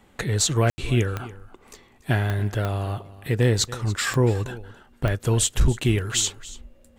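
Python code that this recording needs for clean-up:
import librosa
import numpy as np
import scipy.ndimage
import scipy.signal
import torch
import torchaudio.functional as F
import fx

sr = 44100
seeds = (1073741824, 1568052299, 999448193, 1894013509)

y = fx.fix_declip(x, sr, threshold_db=-11.0)
y = fx.fix_declick_ar(y, sr, threshold=10.0)
y = fx.fix_ambience(y, sr, seeds[0], print_start_s=1.56, print_end_s=2.06, start_s=0.7, end_s=0.78)
y = fx.fix_echo_inverse(y, sr, delay_ms=285, level_db=-18.0)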